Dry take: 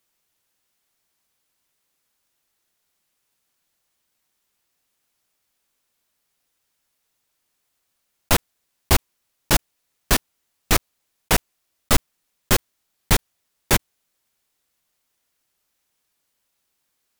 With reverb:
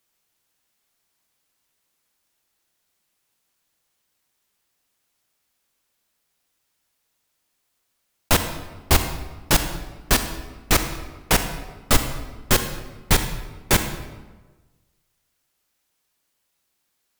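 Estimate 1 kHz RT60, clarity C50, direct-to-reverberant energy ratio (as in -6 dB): 1.2 s, 8.5 dB, 7.5 dB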